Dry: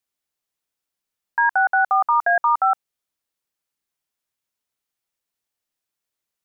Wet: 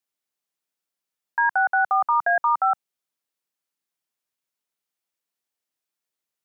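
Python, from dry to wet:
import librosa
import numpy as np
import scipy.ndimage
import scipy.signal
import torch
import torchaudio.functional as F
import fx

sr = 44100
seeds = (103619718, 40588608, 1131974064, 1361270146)

y = scipy.signal.sosfilt(scipy.signal.butter(2, 140.0, 'highpass', fs=sr, output='sos'), x)
y = y * 10.0 ** (-2.5 / 20.0)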